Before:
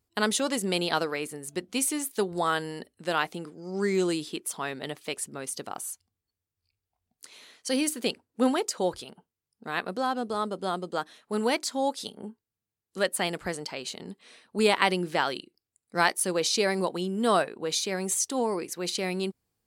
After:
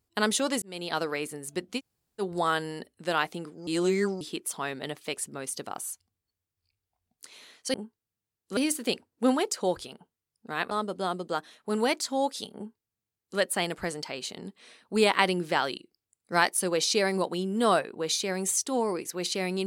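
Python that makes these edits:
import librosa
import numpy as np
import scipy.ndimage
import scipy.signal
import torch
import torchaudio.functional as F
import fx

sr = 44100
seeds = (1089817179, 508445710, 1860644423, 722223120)

y = fx.edit(x, sr, fx.fade_in_span(start_s=0.62, length_s=0.49),
    fx.room_tone_fill(start_s=1.78, length_s=0.43, crossfade_s=0.06),
    fx.reverse_span(start_s=3.67, length_s=0.54),
    fx.cut(start_s=9.88, length_s=0.46),
    fx.duplicate(start_s=12.19, length_s=0.83, to_s=7.74), tone=tone)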